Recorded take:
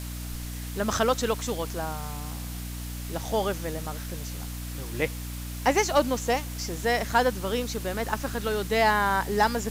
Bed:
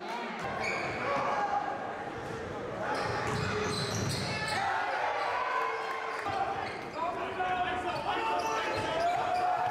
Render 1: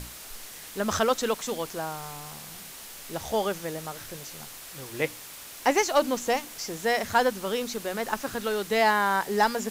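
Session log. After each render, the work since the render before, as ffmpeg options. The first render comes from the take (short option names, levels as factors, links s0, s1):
-af "bandreject=f=60:t=h:w=6,bandreject=f=120:t=h:w=6,bandreject=f=180:t=h:w=6,bandreject=f=240:t=h:w=6,bandreject=f=300:t=h:w=6"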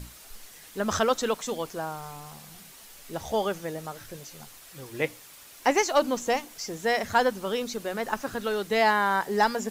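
-af "afftdn=nr=7:nf=-43"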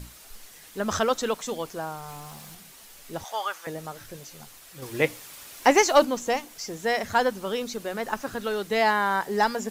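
-filter_complex "[0:a]asettb=1/sr,asplit=3[s0][s1][s2];[s0]atrim=end=2.084[s3];[s1]atrim=start=2.08:end=2.55,asetpts=PTS-STARTPTS,afade=t=in:d=0.004:c=qsin,afade=t=out:st=0.466:d=0.004:c=qsin,aeval=exprs='val(0)+0.5*0.00398*sgn(val(0))':c=same[s4];[s2]atrim=start=2.546[s5];[s3][s4]acrossfade=d=0.004:c1=hsin:c2=qsin[s6];[s6][s5]acrossfade=d=0.004:c1=qsin:c2=hsin,asettb=1/sr,asplit=3[s7][s8][s9];[s7]atrim=end=3.244[s10];[s8]atrim=start=3.24:end=3.67,asetpts=PTS-STARTPTS,afade=t=in:d=0.004:c=qsin,afade=t=out:st=0.426:d=0.004:c=qsin,highpass=f=1100:t=q:w=1.9[s11];[s9]atrim=start=3.666[s12];[s10][s11]acrossfade=d=0.004:c1=hsin:c2=qsin[s13];[s13][s12]acrossfade=d=0.004:c1=qsin:c2=hsin,asettb=1/sr,asplit=3[s14][s15][s16];[s14]atrim=end=4.824[s17];[s15]atrim=start=4.82:end=6.05,asetpts=PTS-STARTPTS,afade=t=in:d=0.004:c=qsin,afade=t=out:st=1.226:d=0.004:c=qsin,acontrast=23[s18];[s16]atrim=start=6.046[s19];[s17][s18]acrossfade=d=0.004:c1=hsin:c2=qsin[s20];[s20][s19]acrossfade=d=0.004:c1=qsin:c2=hsin"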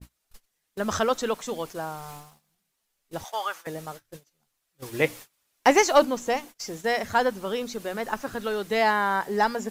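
-af "agate=range=0.0355:threshold=0.0112:ratio=16:detection=peak,adynamicequalizer=threshold=0.0112:dfrequency=2700:dqfactor=0.7:tfrequency=2700:tqfactor=0.7:attack=5:release=100:ratio=0.375:range=2:mode=cutabove:tftype=highshelf"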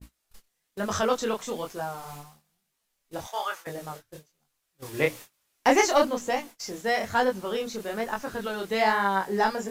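-filter_complex "[0:a]asplit=2[s0][s1];[s1]asoftclip=type=tanh:threshold=0.119,volume=0.335[s2];[s0][s2]amix=inputs=2:normalize=0,flanger=delay=20:depth=7.7:speed=1.1"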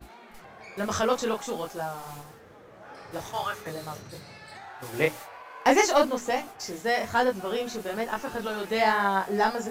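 -filter_complex "[1:a]volume=0.224[s0];[0:a][s0]amix=inputs=2:normalize=0"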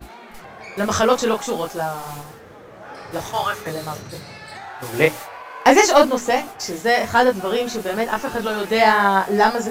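-af "volume=2.66,alimiter=limit=0.891:level=0:latency=1"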